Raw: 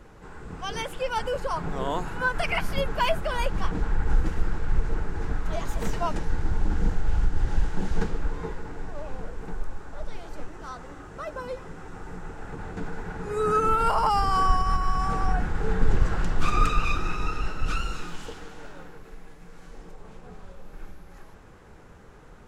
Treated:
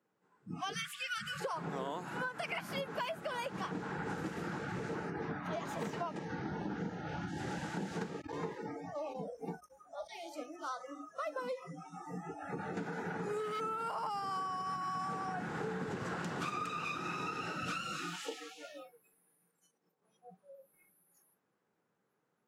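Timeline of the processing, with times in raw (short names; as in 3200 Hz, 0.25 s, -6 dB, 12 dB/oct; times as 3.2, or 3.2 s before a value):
0.74–1.4 spectral gain 220–1100 Hz -26 dB
5.1–7.28 high shelf 5600 Hz -10 dB
8.19–13.61 hard clip -23.5 dBFS
19.5–20.02 compressor, threshold -42 dBFS
whole clip: spectral noise reduction 29 dB; HPF 150 Hz 24 dB/oct; compressor 16:1, threshold -36 dBFS; gain +1 dB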